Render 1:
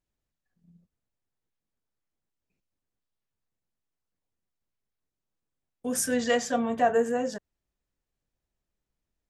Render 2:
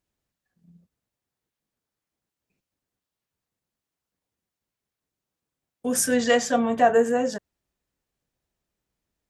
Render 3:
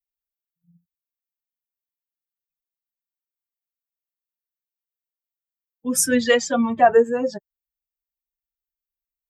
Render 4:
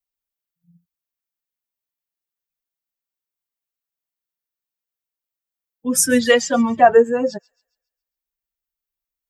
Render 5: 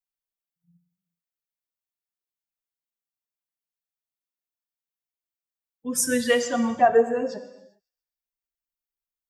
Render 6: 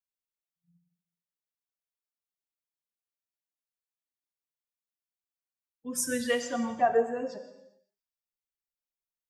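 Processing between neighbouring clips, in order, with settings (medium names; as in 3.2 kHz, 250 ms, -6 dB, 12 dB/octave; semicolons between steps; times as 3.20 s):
high-pass 76 Hz 6 dB/octave; trim +5 dB
expander on every frequency bin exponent 2; trim +6 dB
feedback echo behind a high-pass 137 ms, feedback 41%, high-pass 2.9 kHz, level -22 dB; trim +3 dB
gated-style reverb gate 430 ms falling, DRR 9 dB; trim -7.5 dB
gated-style reverb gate 200 ms flat, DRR 12 dB; trim -7 dB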